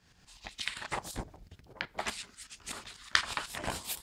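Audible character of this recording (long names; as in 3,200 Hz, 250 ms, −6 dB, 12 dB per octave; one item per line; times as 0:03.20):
tremolo saw up 8.1 Hz, depth 65%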